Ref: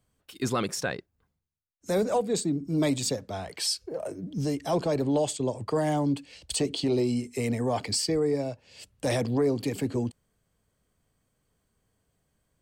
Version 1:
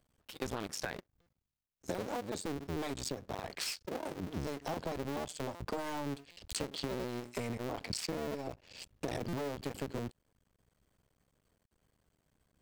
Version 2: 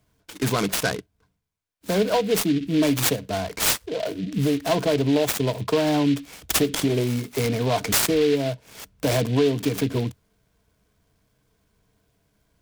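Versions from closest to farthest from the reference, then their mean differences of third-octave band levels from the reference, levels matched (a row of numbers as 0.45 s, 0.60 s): 2, 1; 6.5 dB, 9.5 dB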